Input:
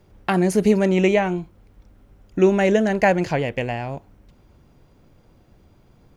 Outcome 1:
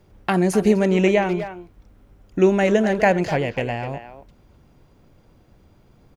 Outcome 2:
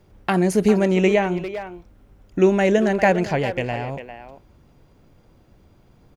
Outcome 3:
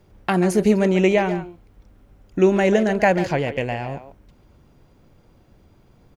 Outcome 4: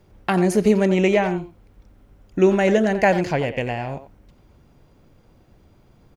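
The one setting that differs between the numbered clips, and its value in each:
speakerphone echo, time: 250 ms, 400 ms, 140 ms, 90 ms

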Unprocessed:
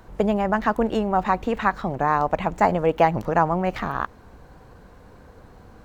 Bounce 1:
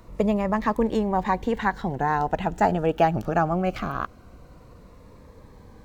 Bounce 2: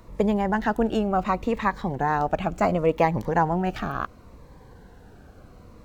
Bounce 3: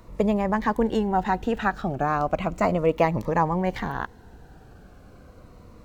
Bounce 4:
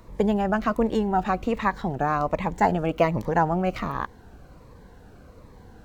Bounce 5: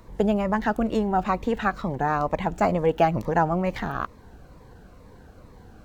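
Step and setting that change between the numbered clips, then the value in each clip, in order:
Shepard-style phaser, rate: 0.21 Hz, 0.7 Hz, 0.35 Hz, 1.3 Hz, 2.2 Hz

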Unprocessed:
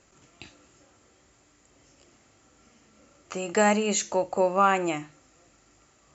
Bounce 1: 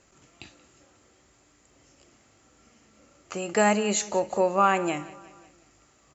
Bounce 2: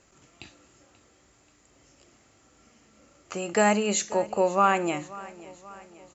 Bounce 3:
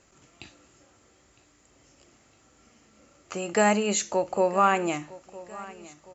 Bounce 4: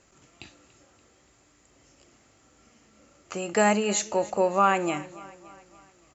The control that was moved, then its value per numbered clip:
feedback delay, time: 180 ms, 534 ms, 959 ms, 287 ms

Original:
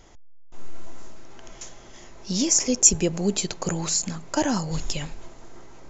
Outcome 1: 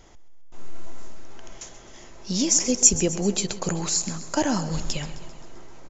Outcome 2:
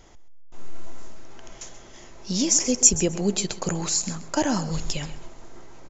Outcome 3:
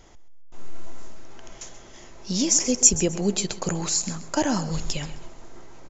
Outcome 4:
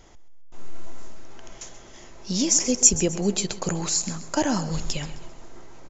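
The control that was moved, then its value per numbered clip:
feedback delay, feedback: 60%, 18%, 27%, 40%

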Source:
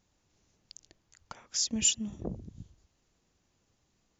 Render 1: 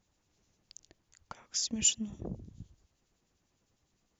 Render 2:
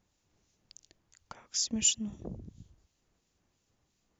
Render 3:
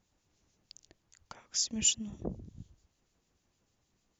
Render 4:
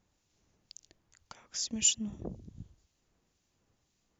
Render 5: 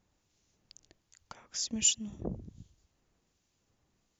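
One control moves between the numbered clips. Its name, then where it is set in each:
harmonic tremolo, rate: 9.9 Hz, 2.9 Hz, 6.6 Hz, 1.9 Hz, 1.3 Hz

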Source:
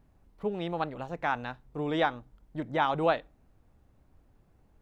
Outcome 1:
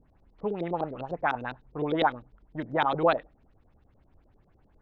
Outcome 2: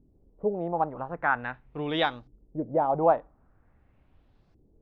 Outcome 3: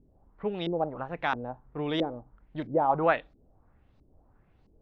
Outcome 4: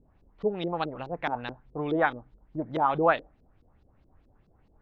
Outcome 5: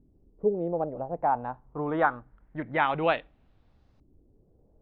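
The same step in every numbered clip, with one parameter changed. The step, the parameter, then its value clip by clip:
LFO low-pass, rate: 9.9 Hz, 0.44 Hz, 1.5 Hz, 4.7 Hz, 0.25 Hz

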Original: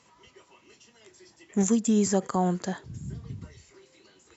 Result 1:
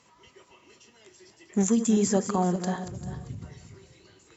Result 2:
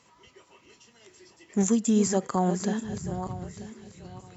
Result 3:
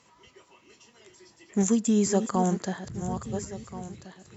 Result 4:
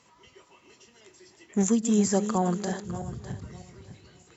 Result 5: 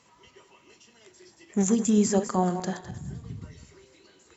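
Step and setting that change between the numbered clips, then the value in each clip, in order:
backward echo that repeats, time: 197 ms, 468 ms, 690 ms, 302 ms, 104 ms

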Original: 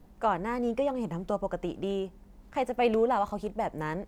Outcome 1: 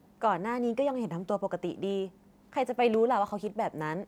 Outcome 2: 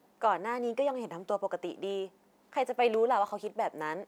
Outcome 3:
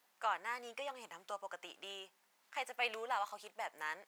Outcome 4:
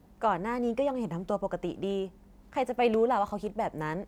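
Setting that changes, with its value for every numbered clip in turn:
high-pass, cutoff frequency: 120 Hz, 370 Hz, 1.5 kHz, 44 Hz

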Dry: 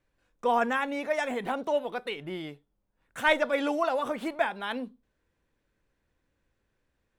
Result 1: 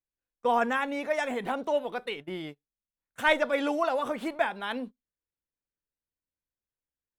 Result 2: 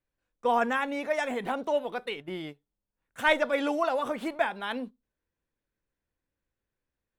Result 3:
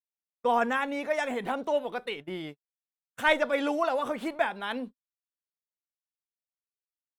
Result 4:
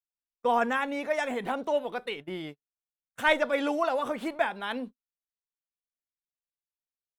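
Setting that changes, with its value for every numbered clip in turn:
gate, range: -24 dB, -11 dB, -53 dB, -39 dB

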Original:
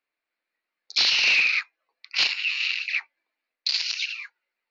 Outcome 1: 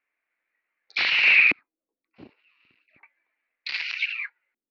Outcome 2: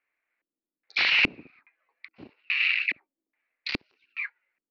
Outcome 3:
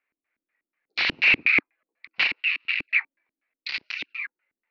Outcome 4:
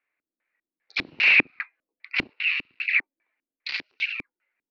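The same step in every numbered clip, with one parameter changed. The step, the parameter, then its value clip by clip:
LFO low-pass, rate: 0.33 Hz, 1.2 Hz, 4.1 Hz, 2.5 Hz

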